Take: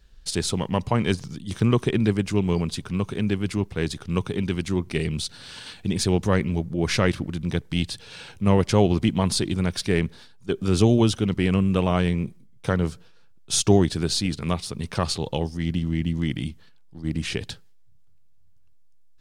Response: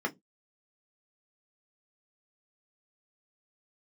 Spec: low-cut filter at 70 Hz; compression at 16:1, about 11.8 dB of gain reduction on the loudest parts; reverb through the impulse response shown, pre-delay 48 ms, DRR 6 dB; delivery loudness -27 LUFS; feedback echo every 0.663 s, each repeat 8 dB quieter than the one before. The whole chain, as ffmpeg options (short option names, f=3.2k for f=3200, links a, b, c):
-filter_complex "[0:a]highpass=70,acompressor=threshold=-23dB:ratio=16,aecho=1:1:663|1326|1989|2652|3315:0.398|0.159|0.0637|0.0255|0.0102,asplit=2[a][b];[1:a]atrim=start_sample=2205,adelay=48[c];[b][c]afir=irnorm=-1:irlink=0,volume=-13dB[d];[a][d]amix=inputs=2:normalize=0,volume=1.5dB"